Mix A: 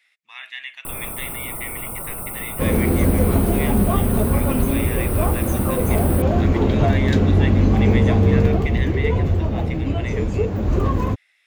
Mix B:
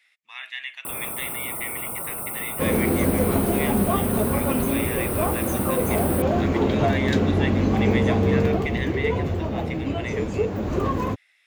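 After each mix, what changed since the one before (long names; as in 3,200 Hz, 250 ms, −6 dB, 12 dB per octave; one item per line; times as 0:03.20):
master: add high-pass filter 210 Hz 6 dB per octave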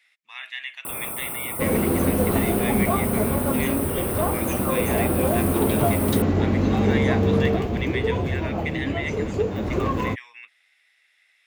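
second sound: entry −1.00 s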